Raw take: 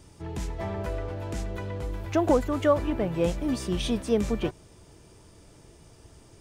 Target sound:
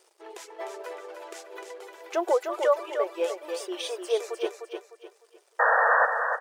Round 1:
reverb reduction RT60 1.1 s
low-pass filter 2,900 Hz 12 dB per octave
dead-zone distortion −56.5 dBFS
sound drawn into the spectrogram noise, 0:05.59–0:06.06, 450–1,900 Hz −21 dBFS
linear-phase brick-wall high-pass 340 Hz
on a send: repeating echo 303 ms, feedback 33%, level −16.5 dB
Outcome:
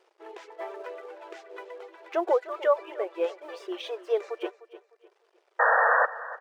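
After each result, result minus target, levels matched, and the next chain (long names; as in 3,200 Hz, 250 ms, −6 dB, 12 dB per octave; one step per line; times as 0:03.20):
echo-to-direct −10.5 dB; 4,000 Hz band −5.0 dB
reverb reduction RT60 1.1 s
low-pass filter 2,900 Hz 12 dB per octave
dead-zone distortion −56.5 dBFS
sound drawn into the spectrogram noise, 0:05.59–0:06.06, 450–1,900 Hz −21 dBFS
linear-phase brick-wall high-pass 340 Hz
on a send: repeating echo 303 ms, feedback 33%, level −6 dB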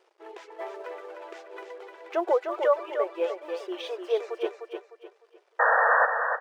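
4,000 Hz band −5.0 dB
reverb reduction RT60 1.1 s
dead-zone distortion −56.5 dBFS
sound drawn into the spectrogram noise, 0:05.59–0:06.06, 450–1,900 Hz −21 dBFS
linear-phase brick-wall high-pass 340 Hz
on a send: repeating echo 303 ms, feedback 33%, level −6 dB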